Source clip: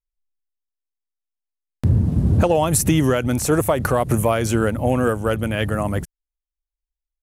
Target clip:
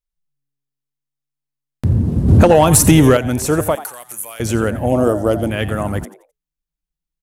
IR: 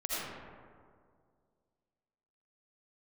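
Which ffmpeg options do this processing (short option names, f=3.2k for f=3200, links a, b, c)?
-filter_complex "[0:a]asettb=1/sr,asplit=3[a][b][c];[a]atrim=end=3.754[d];[b]atrim=start=3.75:end=4.4,asetpts=PTS-STARTPTS,afade=t=in:d=0.004:c=qsin,afade=t=out:st=0.646:d=0.004:c=qsin,aderivative[e];[c]atrim=start=4.396[f];[d][e]acrossfade=d=0.004:c1=hsin:c2=qsin[g];[g][f]acrossfade=d=0.004:c1=qsin:c2=hsin,asplit=4[h][i][j][k];[i]adelay=87,afreqshift=140,volume=-15dB[l];[j]adelay=174,afreqshift=280,volume=-24.9dB[m];[k]adelay=261,afreqshift=420,volume=-34.8dB[n];[h][l][m][n]amix=inputs=4:normalize=0,asettb=1/sr,asplit=3[o][p][q];[o]atrim=end=2.284[r];[p]atrim=start=2.28:end=3.17,asetpts=PTS-STARTPTS,afade=t=in:d=0.004:c=qsin,afade=t=out:st=0.886:d=0.004:c=qsin,acontrast=85[s];[q]atrim=start=3.166[t];[r][s]acrossfade=d=0.004:c1=hsin:c2=qsin[u];[u][t]acrossfade=d=0.004:c1=qsin:c2=hsin,asettb=1/sr,asplit=3[v][w][x];[v]atrim=end=4.924[y];[w]atrim=start=4.92:end=5.5,asetpts=PTS-STARTPTS,afade=t=in:d=0.004:c=qsin,afade=t=out:st=0.576:d=0.004:c=qsin,equalizer=f=315:t=o:w=0.33:g=10,equalizer=f=630:t=o:w=0.33:g=10,equalizer=f=1.6k:t=o:w=0.33:g=-10,equalizer=f=2.5k:t=o:w=0.33:g=-11,equalizer=f=5k:t=o:w=0.33:g=10[z];[x]atrim=start=5.496[aa];[y][z]acrossfade=d=0.004:c1=hsin:c2=qsin[ab];[ab][aa]acrossfade=d=0.004:c1=qsin:c2=hsin,volume=1.5dB"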